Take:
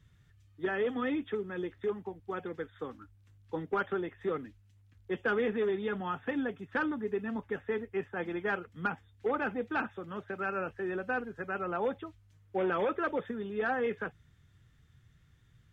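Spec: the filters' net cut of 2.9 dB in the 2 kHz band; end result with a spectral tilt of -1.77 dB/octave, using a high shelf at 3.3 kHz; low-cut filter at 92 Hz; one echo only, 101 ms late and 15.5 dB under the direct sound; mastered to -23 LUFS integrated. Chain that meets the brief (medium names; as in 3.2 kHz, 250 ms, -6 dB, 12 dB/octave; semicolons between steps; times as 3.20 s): high-pass 92 Hz; peaking EQ 2 kHz -3 dB; treble shelf 3.3 kHz -4.5 dB; delay 101 ms -15.5 dB; trim +12.5 dB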